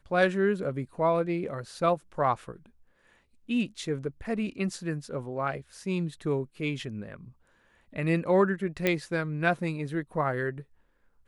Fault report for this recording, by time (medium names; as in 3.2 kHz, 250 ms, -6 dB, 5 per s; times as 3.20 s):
8.87 s: pop -11 dBFS